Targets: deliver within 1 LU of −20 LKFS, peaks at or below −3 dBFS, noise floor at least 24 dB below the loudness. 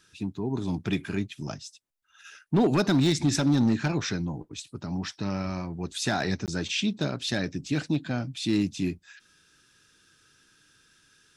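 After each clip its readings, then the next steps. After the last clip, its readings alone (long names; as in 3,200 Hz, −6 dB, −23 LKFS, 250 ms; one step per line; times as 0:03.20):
share of clipped samples 0.7%; peaks flattened at −16.5 dBFS; number of dropouts 1; longest dropout 18 ms; integrated loudness −28.0 LKFS; sample peak −16.5 dBFS; target loudness −20.0 LKFS
→ clipped peaks rebuilt −16.5 dBFS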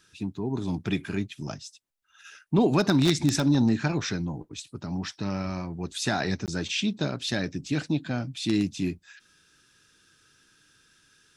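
share of clipped samples 0.0%; number of dropouts 1; longest dropout 18 ms
→ repair the gap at 0:06.46, 18 ms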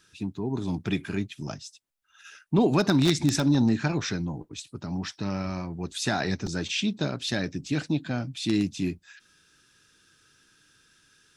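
number of dropouts 0; integrated loudness −27.5 LKFS; sample peak −7.5 dBFS; target loudness −20.0 LKFS
→ level +7.5 dB
brickwall limiter −3 dBFS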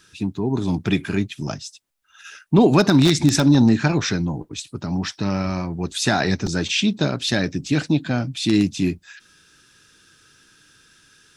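integrated loudness −20.5 LKFS; sample peak −3.0 dBFS; background noise floor −57 dBFS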